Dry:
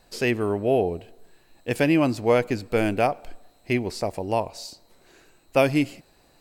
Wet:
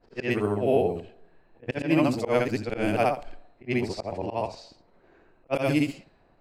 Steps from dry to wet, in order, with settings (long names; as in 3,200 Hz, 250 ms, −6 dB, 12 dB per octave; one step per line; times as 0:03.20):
every overlapping window played backwards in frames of 175 ms
volume swells 112 ms
low-pass that shuts in the quiet parts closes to 1,400 Hz, open at −23 dBFS
level +2 dB